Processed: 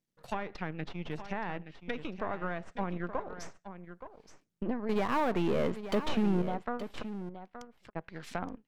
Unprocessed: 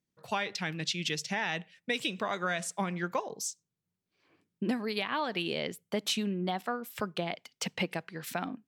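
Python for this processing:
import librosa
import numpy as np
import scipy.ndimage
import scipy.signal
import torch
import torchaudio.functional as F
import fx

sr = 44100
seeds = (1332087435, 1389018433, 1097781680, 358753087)

p1 = np.where(x < 0.0, 10.0 ** (-12.0 / 20.0) * x, x)
p2 = fx.level_steps(p1, sr, step_db=13)
p3 = p1 + (p2 * 10.0 ** (-2.0 / 20.0))
p4 = fx.env_lowpass_down(p3, sr, base_hz=1300.0, full_db=-28.5)
p5 = fx.leveller(p4, sr, passes=3, at=(4.89, 6.42))
p6 = fx.gate_flip(p5, sr, shuts_db=-35.0, range_db=-40, at=(7.01, 7.95), fade=0.02)
p7 = p6 + fx.echo_single(p6, sr, ms=873, db=-11.5, dry=0)
y = p7 * 10.0 ** (-2.5 / 20.0)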